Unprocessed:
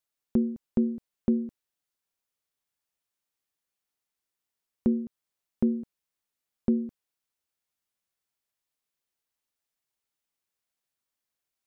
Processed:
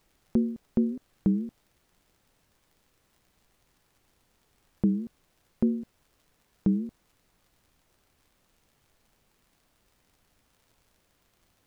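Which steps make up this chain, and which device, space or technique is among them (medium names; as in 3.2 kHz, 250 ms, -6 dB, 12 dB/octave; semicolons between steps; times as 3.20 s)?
warped LP (warped record 33 1/3 rpm, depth 250 cents; crackle; pink noise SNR 35 dB)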